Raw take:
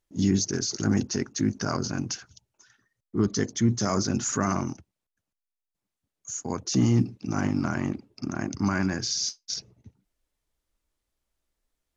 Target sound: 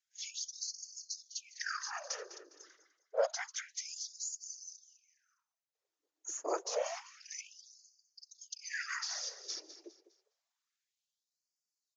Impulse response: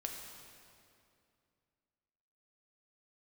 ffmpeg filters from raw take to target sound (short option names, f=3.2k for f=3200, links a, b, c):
-filter_complex "[0:a]asettb=1/sr,asplit=3[a][b][c];[a]atrim=end=7.414[d];[b]atrim=start=7.41:end=8.42,asetpts=PTS-STARTPTS,afade=t=in:d=0.004:c=qsin,afade=t=out:st=1.006:d=0.004:c=qsin,aemphasis=mode=reproduction:type=75kf[e];[c]atrim=start=8.416[f];[d][e]acrossfade=d=0.004:c1=hsin:c2=qsin[g];[g][f]acrossfade=d=0.004:c1=qsin:c2=hsin,acrossover=split=3100[h][i];[h]aeval=exprs='val(0)*sin(2*PI*230*n/s)':c=same[j];[i]acompressor=threshold=-41dB:ratio=5[k];[j][k]amix=inputs=2:normalize=0,asplit=2[l][m];[m]adelay=204.1,volume=-13dB,highshelf=f=4k:g=-4.59[n];[l][n]amix=inputs=2:normalize=0,afftfilt=real='hypot(re,im)*cos(2*PI*random(0))':imag='hypot(re,im)*sin(2*PI*random(1))':win_size=512:overlap=0.75,asplit=2[o][p];[p]aecho=0:1:204|408|612:0.158|0.0602|0.0229[q];[o][q]amix=inputs=2:normalize=0,aresample=16000,aresample=44100,afftfilt=real='re*gte(b*sr/1024,260*pow(4400/260,0.5+0.5*sin(2*PI*0.28*pts/sr)))':imag='im*gte(b*sr/1024,260*pow(4400/260,0.5+0.5*sin(2*PI*0.28*pts/sr)))':win_size=1024:overlap=0.75,volume=7dB"